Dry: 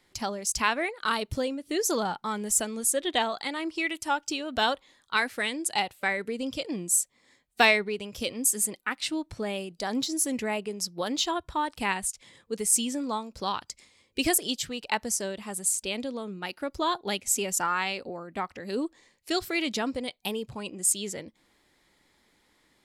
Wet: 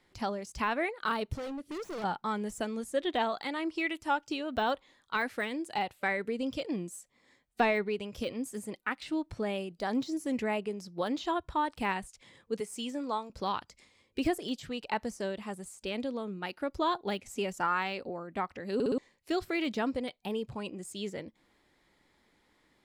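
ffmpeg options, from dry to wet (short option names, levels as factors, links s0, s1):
-filter_complex "[0:a]asettb=1/sr,asplit=3[s0][s1][s2];[s0]atrim=end=1.334[s3];[s1]atrim=start=1.33:end=2.04,asetpts=PTS-STARTPTS,afade=t=in:d=0.004:c=qsin,afade=t=out:st=0.706:d=0.004:c=qsin,volume=56.2,asoftclip=hard,volume=0.0178[s4];[s2]atrim=start=2.036[s5];[s3][s4]acrossfade=d=0.004:c1=hsin:c2=qsin[s6];[s6][s5]acrossfade=d=0.004:c1=qsin:c2=hsin,asettb=1/sr,asplit=3[s7][s8][s9];[s7]atrim=end=12.604[s10];[s8]atrim=start=12.6:end=13.3,asetpts=PTS-STARTPTS,afade=t=in:d=0.004:c=qsin,afade=t=out:st=0.696:d=0.004:c=qsin,highpass=310[s11];[s9]atrim=start=13.296[s12];[s10][s11]acrossfade=d=0.004:c1=hsin:c2=qsin[s13];[s13][s12]acrossfade=d=0.004:c1=qsin:c2=hsin,asplit=5[s14][s15][s16][s17][s18];[s14]atrim=end=18.802[s19];[s15]atrim=start=18.738:end=18.802[s20];[s16]atrim=start=18.738:end=18.802[s21];[s17]atrim=start=18.738:end=18.802[s22];[s18]atrim=start=18.978[s23];[s19][s20]acrossfade=d=0.004:c1=hsin:c2=hsin[s24];[s24][s21]acrossfade=d=0.004:c1=hsin:c2=hsin[s25];[s25][s22]acrossfade=d=0.004:c1=hsin:c2=hsin[s26];[s26][s23]acrossfade=d=0.004:c1=hsin:c2=hsin,deesser=0.9,highshelf=f=3900:g=-8.5,volume=0.891"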